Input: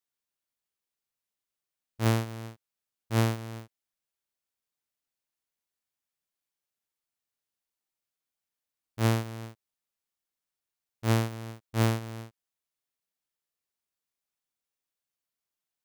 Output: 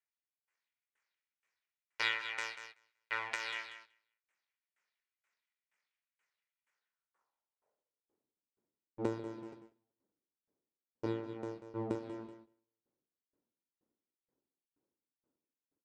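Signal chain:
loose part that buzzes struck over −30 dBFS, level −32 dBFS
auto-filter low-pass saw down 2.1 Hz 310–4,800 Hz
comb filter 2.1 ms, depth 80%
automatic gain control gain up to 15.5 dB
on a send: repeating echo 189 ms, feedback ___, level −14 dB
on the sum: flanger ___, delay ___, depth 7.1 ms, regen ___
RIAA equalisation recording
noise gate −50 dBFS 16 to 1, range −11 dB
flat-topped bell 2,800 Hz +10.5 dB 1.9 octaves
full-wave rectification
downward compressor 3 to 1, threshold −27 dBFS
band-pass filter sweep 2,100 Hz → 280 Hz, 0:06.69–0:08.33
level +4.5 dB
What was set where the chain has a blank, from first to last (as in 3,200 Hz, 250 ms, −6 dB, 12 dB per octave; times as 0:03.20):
23%, 0.46 Hz, 5.4 ms, +81%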